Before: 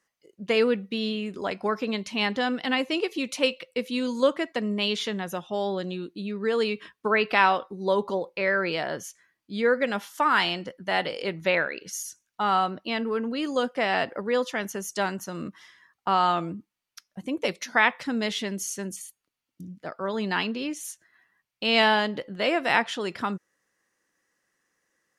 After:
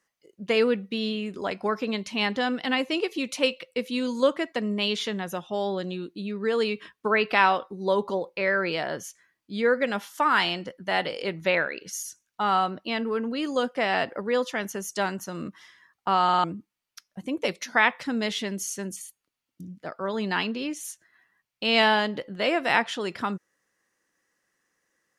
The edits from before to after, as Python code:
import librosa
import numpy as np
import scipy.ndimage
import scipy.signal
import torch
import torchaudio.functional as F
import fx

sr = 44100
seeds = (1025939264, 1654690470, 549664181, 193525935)

y = fx.edit(x, sr, fx.stutter_over(start_s=16.24, slice_s=0.05, count=4), tone=tone)